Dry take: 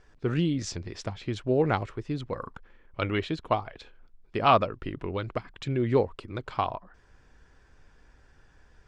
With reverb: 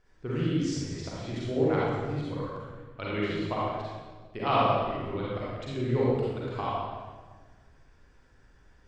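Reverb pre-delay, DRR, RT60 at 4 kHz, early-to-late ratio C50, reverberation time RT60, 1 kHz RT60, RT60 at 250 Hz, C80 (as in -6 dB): 37 ms, -7.5 dB, 1.2 s, -5.0 dB, 1.4 s, 1.3 s, 1.8 s, -1.0 dB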